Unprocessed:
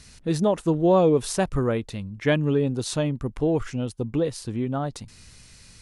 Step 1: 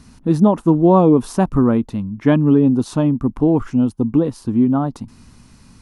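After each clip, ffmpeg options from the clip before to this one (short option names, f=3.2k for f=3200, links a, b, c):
-af "equalizer=f=250:t=o:w=1:g=12,equalizer=f=500:t=o:w=1:g=-5,equalizer=f=1k:t=o:w=1:g=8,equalizer=f=2k:t=o:w=1:g=-7,equalizer=f=4k:t=o:w=1:g=-6,equalizer=f=8k:t=o:w=1:g=-8,volume=3.5dB"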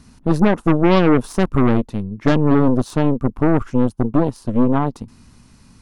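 -af "aeval=exprs='0.891*(cos(1*acos(clip(val(0)/0.891,-1,1)))-cos(1*PI/2))+0.141*(cos(8*acos(clip(val(0)/0.891,-1,1)))-cos(8*PI/2))':c=same,volume=-2dB"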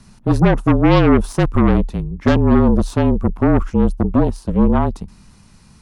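-af "afreqshift=-36,volume=1.5dB"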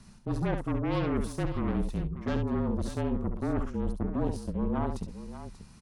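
-af "areverse,acompressor=threshold=-20dB:ratio=6,areverse,aecho=1:1:68|588:0.447|0.237,volume=-7dB"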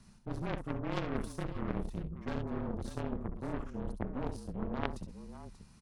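-af "aeval=exprs='0.133*(cos(1*acos(clip(val(0)/0.133,-1,1)))-cos(1*PI/2))+0.0299*(cos(2*acos(clip(val(0)/0.133,-1,1)))-cos(2*PI/2))+0.0596*(cos(3*acos(clip(val(0)/0.133,-1,1)))-cos(3*PI/2))+0.0211*(cos(5*acos(clip(val(0)/0.133,-1,1)))-cos(5*PI/2))':c=same,volume=1dB"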